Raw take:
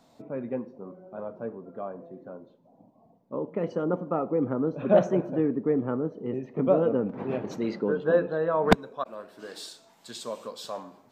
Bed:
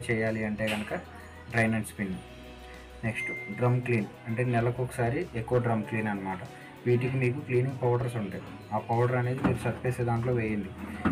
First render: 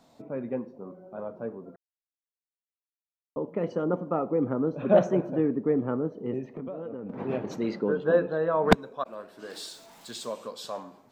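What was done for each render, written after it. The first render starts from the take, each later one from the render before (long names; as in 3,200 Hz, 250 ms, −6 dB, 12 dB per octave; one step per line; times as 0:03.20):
0:01.76–0:03.36: silence
0:06.46–0:07.10: downward compressor 10 to 1, threshold −33 dBFS
0:09.50–0:10.32: converter with a step at zero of −50.5 dBFS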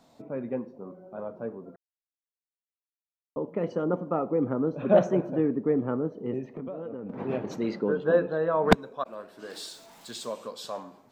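no processing that can be heard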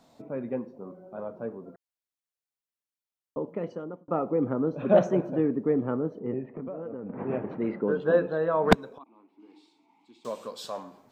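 0:03.38–0:04.08: fade out
0:06.19–0:07.88: low-pass filter 2,300 Hz 24 dB per octave
0:08.98–0:10.25: formant filter u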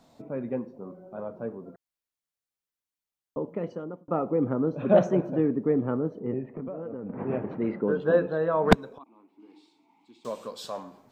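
low-shelf EQ 140 Hz +5 dB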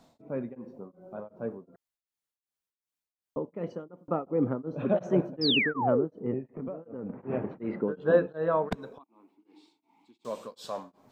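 0:05.41–0:06.05: sound drawn into the spectrogram fall 330–5,400 Hz −25 dBFS
tremolo along a rectified sine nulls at 2.7 Hz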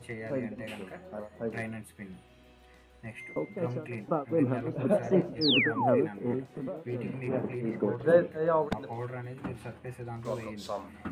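mix in bed −11.5 dB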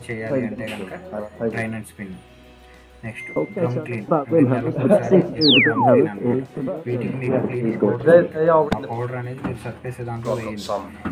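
level +11 dB
brickwall limiter −2 dBFS, peak gain reduction 1.5 dB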